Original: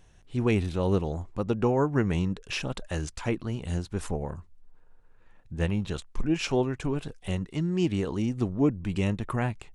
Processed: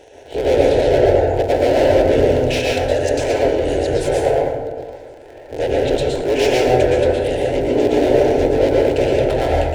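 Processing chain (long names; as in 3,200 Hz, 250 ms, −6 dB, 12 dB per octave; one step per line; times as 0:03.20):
sub-harmonics by changed cycles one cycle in 3, inverted
parametric band 540 Hz +12.5 dB 1.8 octaves
mid-hump overdrive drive 30 dB, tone 3,100 Hz, clips at −4 dBFS
phaser with its sweep stopped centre 480 Hz, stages 4
echo through a band-pass that steps 118 ms, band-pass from 180 Hz, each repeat 0.7 octaves, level −8 dB
convolution reverb RT60 1.2 s, pre-delay 112 ms, DRR −3.5 dB
level −6 dB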